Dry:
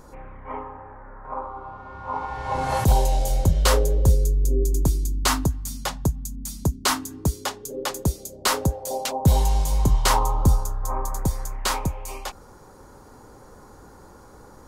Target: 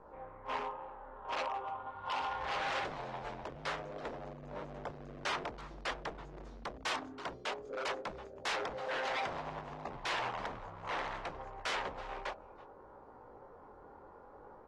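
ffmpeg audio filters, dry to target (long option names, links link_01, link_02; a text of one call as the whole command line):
ffmpeg -i in.wav -filter_complex "[0:a]adynamicsmooth=sensitivity=1:basefreq=870,flanger=delay=17.5:depth=7.5:speed=0.61,acompressor=threshold=-25dB:ratio=20,bandreject=frequency=63.56:width_type=h:width=4,bandreject=frequency=127.12:width_type=h:width=4,bandreject=frequency=190.68:width_type=h:width=4,bandreject=frequency=254.24:width_type=h:width=4,bandreject=frequency=317.8:width_type=h:width=4,bandreject=frequency=381.36:width_type=h:width=4,bandreject=frequency=444.92:width_type=h:width=4,bandreject=frequency=508.48:width_type=h:width=4,bandreject=frequency=572.04:width_type=h:width=4,bandreject=frequency=635.6:width_type=h:width=4,bandreject=frequency=699.16:width_type=h:width=4,bandreject=frequency=762.72:width_type=h:width=4,asoftclip=type=tanh:threshold=-22dB,asettb=1/sr,asplit=3[link_01][link_02][link_03];[link_01]atrim=end=1.904[link_04];[link_02]atrim=start=1.9:end=3.96,asetpts=PTS-STARTPTS,afade=type=in:duration=0.004:curve=qsin,afade=type=out:start_time=2.056:duration=0.004:curve=qsin,equalizer=frequency=480:width=0.61:gain=-5.5[link_05];[link_03]atrim=start=3.956[link_06];[link_04][link_05]acrossfade=duration=0.004:curve1=hsin:curve2=qsin[link_07];[link_07][link_06]acrossfade=duration=0.004:curve1=qsin:curve2=hsin,aecho=1:1:329:0.0944,aeval=exprs='0.0188*(abs(mod(val(0)/0.0188+3,4)-2)-1)':channel_layout=same,acrossover=split=450 6900:gain=0.141 1 0.1[link_08][link_09][link_10];[link_08][link_09][link_10]amix=inputs=3:normalize=0,volume=4.5dB" -ar 32000 -c:a aac -b:a 32k out.aac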